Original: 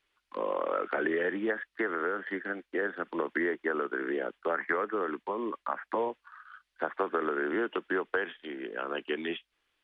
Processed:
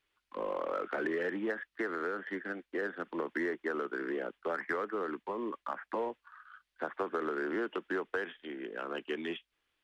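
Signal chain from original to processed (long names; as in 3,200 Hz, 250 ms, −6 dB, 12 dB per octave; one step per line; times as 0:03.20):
parametric band 110 Hz +3.5 dB 2.6 octaves
in parallel at −8.5 dB: hard clipping −31 dBFS, distortion −8 dB
on the sum: level −6.5 dB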